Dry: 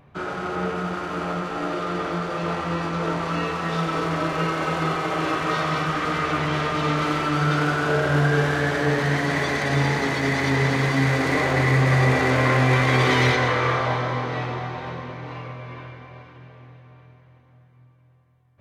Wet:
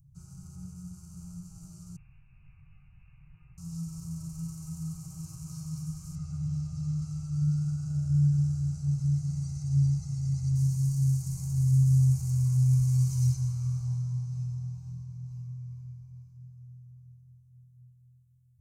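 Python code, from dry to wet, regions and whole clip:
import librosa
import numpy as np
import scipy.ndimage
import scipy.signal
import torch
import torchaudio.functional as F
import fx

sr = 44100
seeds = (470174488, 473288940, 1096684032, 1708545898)

y = fx.chain(x, sr, fx.highpass(hz=550.0, slope=12),
    fx.freq_invert(carrier_hz=3100), at=(1.96, 3.58))
y = fx.chain(y, sr, fx.highpass(hz=48.0, slope=12),
    fx.air_absorb(metres=91.0),
    fx.comb(ms=1.5, depth=0.6), at=(6.15, 10.56))
y = scipy.signal.sosfilt(scipy.signal.cheby2(4, 40, [250.0, 3700.0], 'bandstop', fs=sr, output='sos'), y)
y = y + 0.32 * np.pad(y, (int(6.3 * sr / 1000.0), 0))[:len(y)]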